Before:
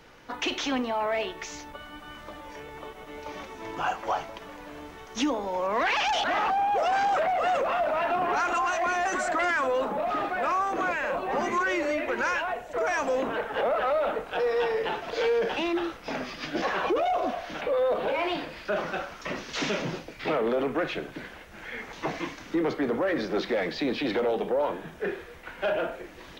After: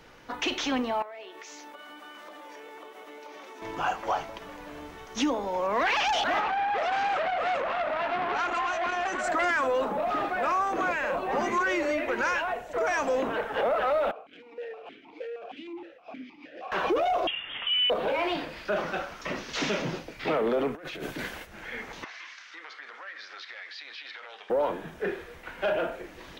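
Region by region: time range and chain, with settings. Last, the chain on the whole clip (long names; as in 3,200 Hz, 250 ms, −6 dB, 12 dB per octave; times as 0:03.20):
0:01.02–0:03.62: high-pass filter 280 Hz 24 dB per octave + downward compressor, threshold −41 dBFS
0:06.40–0:09.24: low-pass filter 4,000 Hz 6 dB per octave + saturating transformer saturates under 1,300 Hz
0:14.11–0:16.72: hard clipping −28 dBFS + formant filter that steps through the vowels 6.4 Hz
0:17.27–0:17.90: high-frequency loss of the air 250 metres + voice inversion scrambler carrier 3,500 Hz
0:20.75–0:21.47: downward expander −44 dBFS + high-shelf EQ 5,200 Hz +10.5 dB + compressor whose output falls as the input rises −38 dBFS
0:22.04–0:24.50: Chebyshev band-pass filter 1,500–5,500 Hz + downward compressor 3 to 1, threshold −40 dBFS
whole clip: no processing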